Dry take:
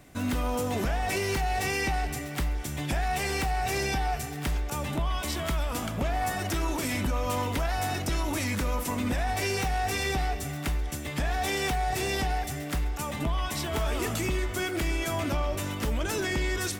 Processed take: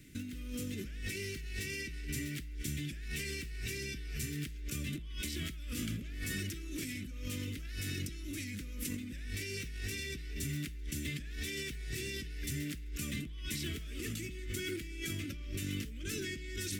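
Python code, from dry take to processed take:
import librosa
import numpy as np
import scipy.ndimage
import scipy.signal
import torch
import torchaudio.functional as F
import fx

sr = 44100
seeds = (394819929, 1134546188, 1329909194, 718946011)

y = scipy.signal.sosfilt(scipy.signal.cheby1(2, 1.0, [310.0, 2200.0], 'bandstop', fs=sr, output='sos'), x)
y = fx.over_compress(y, sr, threshold_db=-35.0, ratio=-1.0)
y = y * librosa.db_to_amplitude(-5.0)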